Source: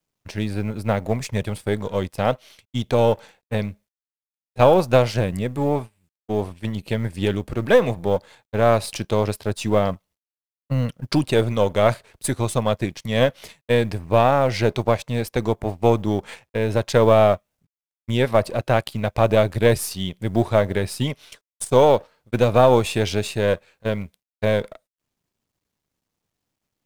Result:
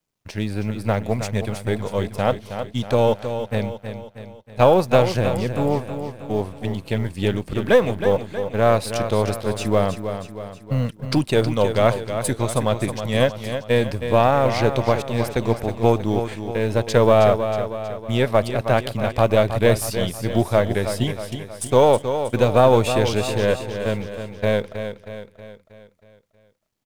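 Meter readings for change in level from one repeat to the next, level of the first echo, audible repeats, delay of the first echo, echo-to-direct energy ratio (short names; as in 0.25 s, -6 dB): -6.0 dB, -9.0 dB, 5, 0.318 s, -7.5 dB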